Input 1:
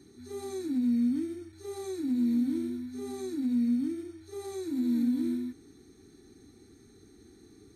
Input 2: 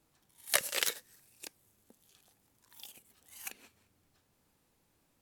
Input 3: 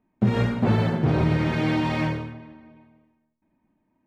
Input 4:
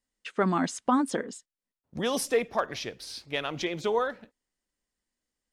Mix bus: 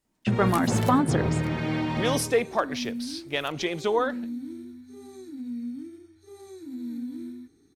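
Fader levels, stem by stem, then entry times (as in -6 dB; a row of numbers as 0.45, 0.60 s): -7.0, -10.0, -4.5, +2.5 dB; 1.95, 0.00, 0.05, 0.00 s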